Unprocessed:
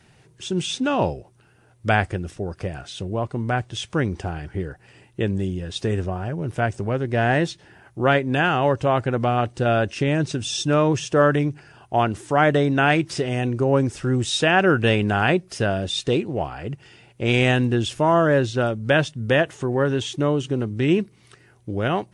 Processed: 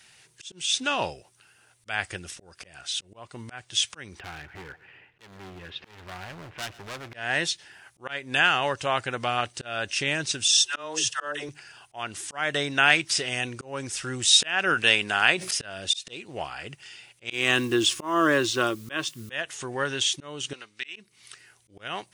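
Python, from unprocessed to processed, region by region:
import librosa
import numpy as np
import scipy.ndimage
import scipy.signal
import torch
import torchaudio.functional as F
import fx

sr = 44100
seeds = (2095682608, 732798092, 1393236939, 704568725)

y = fx.chain(x, sr, fx.lowpass(hz=2500.0, slope=24),
    fx.overload_stage(gain_db=28.5),
    fx.echo_feedback(ms=120, feedback_pct=59, wet_db=-19.5), at=(4.19, 7.14))
y = fx.chain(y, sr, fx.peak_eq(hz=170.0, db=-14.0, octaves=0.74),
    fx.notch(hz=2300.0, q=6.2),
    fx.dispersion(late='lows', ms=118.0, hz=490.0), at=(10.48, 11.49))
y = fx.chain(y, sr, fx.highpass(hz=190.0, slope=6),
    fx.sustainer(db_per_s=110.0), at=(14.74, 15.51))
y = fx.chain(y, sr, fx.small_body(hz=(330.0, 1100.0), ring_ms=40, db=15),
    fx.quant_dither(seeds[0], bits=10, dither='triangular'), at=(17.32, 19.31))
y = fx.chain(y, sr, fx.bandpass_q(hz=2900.0, q=0.78),
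    fx.notch(hz=3200.0, q=13.0), at=(20.53, 20.96))
y = fx.low_shelf(y, sr, hz=490.0, db=-6.0)
y = fx.auto_swell(y, sr, attack_ms=289.0)
y = fx.tilt_shelf(y, sr, db=-9.0, hz=1300.0)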